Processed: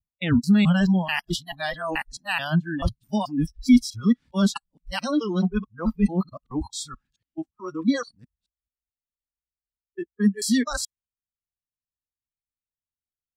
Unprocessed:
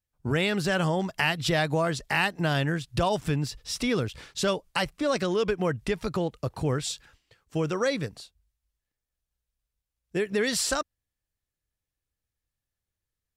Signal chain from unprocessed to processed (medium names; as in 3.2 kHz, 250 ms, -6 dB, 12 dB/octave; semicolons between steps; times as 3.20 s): time reversed locally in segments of 217 ms; resonant low shelf 330 Hz +9.5 dB, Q 3; spectral noise reduction 27 dB